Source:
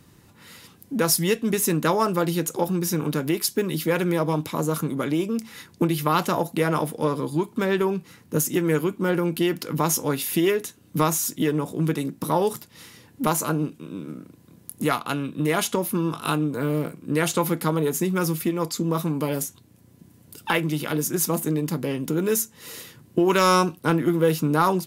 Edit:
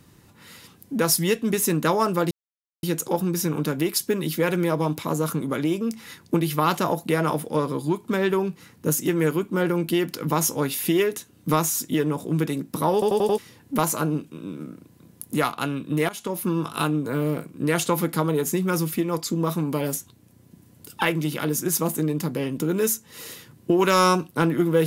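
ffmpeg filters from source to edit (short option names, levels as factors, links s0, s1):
-filter_complex "[0:a]asplit=8[s0][s1][s2][s3][s4][s5][s6][s7];[s0]atrim=end=2.31,asetpts=PTS-STARTPTS,afade=t=out:st=2.306:d=0.004:c=hsin,apad=pad_dur=0.52[s8];[s1]atrim=start=2.31:end=12.502,asetpts=PTS-STARTPTS,afade=t=in:d=0.004:c=hsin[s9];[s2]atrim=start=12.408:end=12.502[s10];[s3]atrim=start=12.408:end=12.502[s11];[s4]atrim=start=12.408:end=12.502[s12];[s5]atrim=start=12.408:end=12.502[s13];[s6]atrim=start=12.858:end=15.57,asetpts=PTS-STARTPTS,afade=t=out:st=2.708:d=0.004:c=hsin:silence=0.11885[s14];[s7]atrim=start=15.57,asetpts=PTS-STARTPTS,afade=t=in:d=0.39:silence=0.11885[s15];[s8][s9]concat=n=2:v=0:a=1[s16];[s16][s10]acrossfade=d=0.004:c1=hsin:c2=hsin[s17];[s17][s11]acrossfade=d=0.004:c1=hsin:c2=hsin[s18];[s18][s12]acrossfade=d=0.004:c1=hsin:c2=hsin[s19];[s19][s13]acrossfade=d=0.004:c1=hsin:c2=hsin[s20];[s14][s15]concat=n=2:v=0:a=1[s21];[s20][s21]acrossfade=d=0.004:c1=hsin:c2=hsin"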